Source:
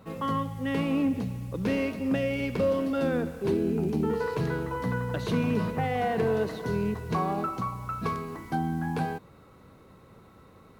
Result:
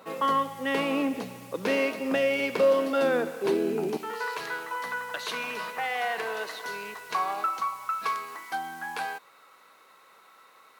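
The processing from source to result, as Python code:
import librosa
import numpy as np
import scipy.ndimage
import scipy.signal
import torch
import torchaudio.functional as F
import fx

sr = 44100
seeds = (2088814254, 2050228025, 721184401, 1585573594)

y = fx.highpass(x, sr, hz=fx.steps((0.0, 450.0), (3.97, 1100.0)), slope=12)
y = y * librosa.db_to_amplitude(6.5)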